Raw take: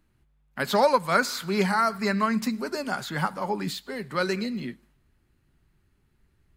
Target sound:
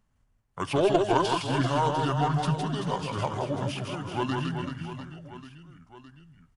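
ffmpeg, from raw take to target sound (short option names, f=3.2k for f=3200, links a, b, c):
-af "aeval=exprs='0.422*(cos(1*acos(clip(val(0)/0.422,-1,1)))-cos(1*PI/2))+0.0266*(cos(2*acos(clip(val(0)/0.422,-1,1)))-cos(2*PI/2))+0.075*(cos(3*acos(clip(val(0)/0.422,-1,1)))-cos(3*PI/2))+0.0211*(cos(5*acos(clip(val(0)/0.422,-1,1)))-cos(5*PI/2))':c=same,asetrate=30296,aresample=44100,atempo=1.45565,aecho=1:1:160|384|697.6|1137|1751:0.631|0.398|0.251|0.158|0.1"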